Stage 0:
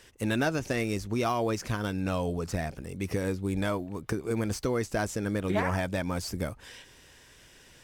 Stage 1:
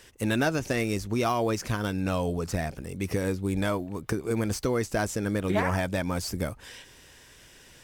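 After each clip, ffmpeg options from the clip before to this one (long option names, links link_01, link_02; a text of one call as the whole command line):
ffmpeg -i in.wav -af "highshelf=frequency=9300:gain=3.5,volume=2dB" out.wav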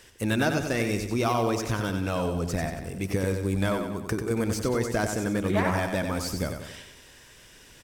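ffmpeg -i in.wav -af "aecho=1:1:93|186|279|372|465|558:0.473|0.232|0.114|0.0557|0.0273|0.0134" out.wav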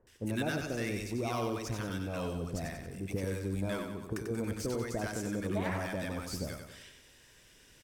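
ffmpeg -i in.wav -filter_complex "[0:a]acrossover=split=1000[link_01][link_02];[link_02]adelay=70[link_03];[link_01][link_03]amix=inputs=2:normalize=0,volume=-8dB" out.wav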